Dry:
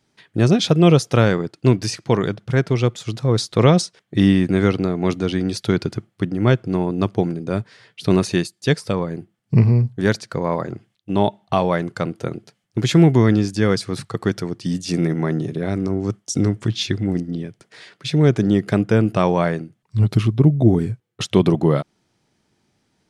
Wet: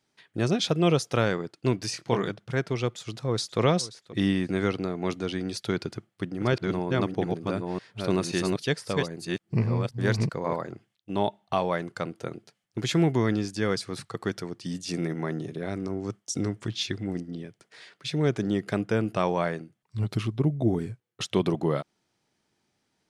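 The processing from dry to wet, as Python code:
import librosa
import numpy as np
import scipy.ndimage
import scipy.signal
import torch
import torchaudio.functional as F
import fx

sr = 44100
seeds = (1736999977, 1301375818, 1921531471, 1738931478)

y = fx.doubler(x, sr, ms=25.0, db=-5.5, at=(1.91, 2.31))
y = fx.echo_throw(y, sr, start_s=2.94, length_s=0.65, ms=530, feedback_pct=15, wet_db=-17.0)
y = fx.reverse_delay(y, sr, ms=530, wet_db=-2, at=(5.67, 10.56))
y = fx.low_shelf(y, sr, hz=290.0, db=-7.0)
y = y * librosa.db_to_amplitude(-6.0)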